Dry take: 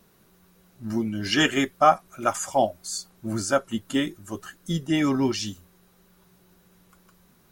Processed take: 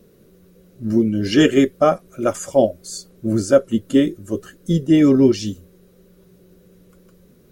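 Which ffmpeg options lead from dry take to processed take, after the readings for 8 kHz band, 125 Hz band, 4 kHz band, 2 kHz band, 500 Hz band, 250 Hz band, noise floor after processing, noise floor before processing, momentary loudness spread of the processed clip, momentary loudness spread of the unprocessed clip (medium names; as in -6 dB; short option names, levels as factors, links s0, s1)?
0.0 dB, +8.5 dB, -0.5 dB, -1.0 dB, +9.5 dB, +10.0 dB, -53 dBFS, -60 dBFS, 15 LU, 13 LU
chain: -af "lowshelf=f=640:t=q:w=3:g=8"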